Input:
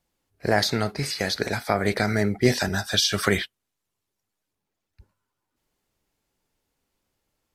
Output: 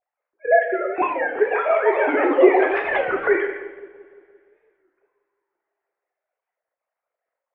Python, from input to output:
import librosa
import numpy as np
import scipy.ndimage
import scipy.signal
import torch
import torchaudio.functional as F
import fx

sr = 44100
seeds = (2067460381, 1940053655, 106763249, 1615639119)

y = fx.sine_speech(x, sr)
y = fx.sample_gate(y, sr, floor_db=-27.5, at=(2.89, 3.35))
y = fx.echo_pitch(y, sr, ms=663, semitones=6, count=2, db_per_echo=-3.0)
y = scipy.signal.sosfilt(scipy.signal.butter(6, 2200.0, 'lowpass', fs=sr, output='sos'), y)
y = fx.low_shelf(y, sr, hz=420.0, db=4.0)
y = fx.echo_filtered(y, sr, ms=172, feedback_pct=63, hz=910.0, wet_db=-15.0)
y = fx.rev_double_slope(y, sr, seeds[0], early_s=0.99, late_s=2.9, knee_db=-23, drr_db=1.0)
y = fx.record_warp(y, sr, rpm=33.33, depth_cents=160.0)